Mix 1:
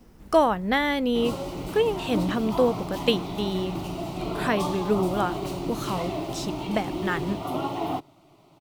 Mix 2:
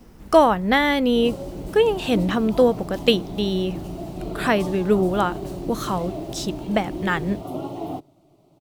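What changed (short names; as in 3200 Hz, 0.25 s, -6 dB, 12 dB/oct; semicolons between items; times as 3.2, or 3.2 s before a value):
speech +5.0 dB; background: add EQ curve 620 Hz 0 dB, 1000 Hz -10 dB, 2200 Hz -11 dB, 8300 Hz -3 dB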